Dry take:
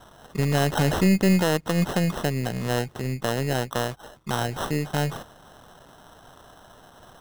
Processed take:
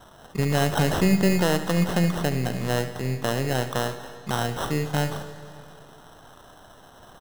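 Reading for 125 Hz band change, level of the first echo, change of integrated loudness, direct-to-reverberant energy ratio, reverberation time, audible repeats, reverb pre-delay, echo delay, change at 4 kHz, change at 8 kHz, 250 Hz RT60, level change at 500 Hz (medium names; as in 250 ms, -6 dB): 0.0 dB, -14.0 dB, 0.0 dB, 9.0 dB, 2.5 s, 1, 23 ms, 72 ms, +0.5 dB, +0.5 dB, 2.5 s, +0.5 dB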